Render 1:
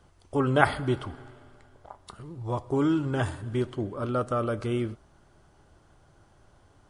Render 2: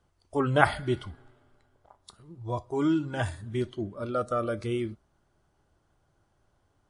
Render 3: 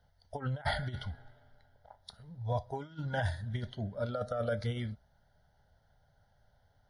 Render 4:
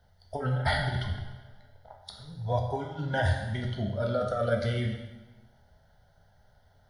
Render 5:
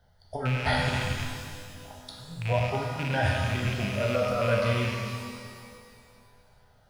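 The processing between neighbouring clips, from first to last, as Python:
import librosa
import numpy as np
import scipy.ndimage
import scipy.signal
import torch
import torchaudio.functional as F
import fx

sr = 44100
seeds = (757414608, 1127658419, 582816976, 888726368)

y1 = fx.noise_reduce_blind(x, sr, reduce_db=11)
y2 = fx.over_compress(y1, sr, threshold_db=-29.0, ratio=-0.5)
y2 = fx.fixed_phaser(y2, sr, hz=1700.0, stages=8)
y3 = fx.rev_plate(y2, sr, seeds[0], rt60_s=1.1, hf_ratio=0.95, predelay_ms=0, drr_db=1.0)
y3 = y3 * 10.0 ** (4.5 / 20.0)
y4 = fx.rattle_buzz(y3, sr, strikes_db=-32.0, level_db=-24.0)
y4 = fx.rev_shimmer(y4, sr, seeds[1], rt60_s=2.1, semitones=12, shimmer_db=-8, drr_db=2.5)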